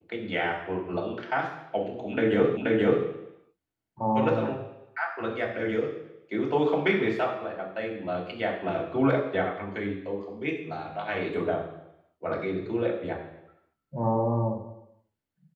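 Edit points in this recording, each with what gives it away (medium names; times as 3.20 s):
2.57 s: repeat of the last 0.48 s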